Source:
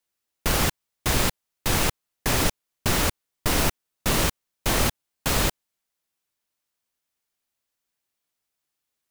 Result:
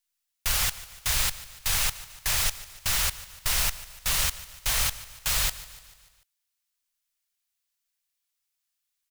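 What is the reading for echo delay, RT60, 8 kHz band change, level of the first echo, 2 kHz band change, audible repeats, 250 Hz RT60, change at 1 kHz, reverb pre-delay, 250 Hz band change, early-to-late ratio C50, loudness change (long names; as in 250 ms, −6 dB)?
147 ms, no reverb audible, +1.0 dB, −17.0 dB, −3.0 dB, 4, no reverb audible, −8.0 dB, no reverb audible, −20.5 dB, no reverb audible, −1.5 dB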